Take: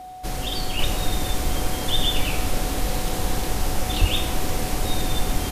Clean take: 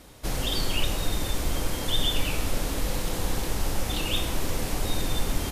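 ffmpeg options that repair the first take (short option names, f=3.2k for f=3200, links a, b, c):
-filter_complex "[0:a]bandreject=f=740:w=30,asplit=3[a][b][c];[a]afade=t=out:st=4:d=0.02[d];[b]highpass=f=140:w=0.5412,highpass=f=140:w=1.3066,afade=t=in:st=4:d=0.02,afade=t=out:st=4.12:d=0.02[e];[c]afade=t=in:st=4.12:d=0.02[f];[d][e][f]amix=inputs=3:normalize=0,asetnsamples=n=441:p=0,asendcmd='0.79 volume volume -3.5dB',volume=0dB"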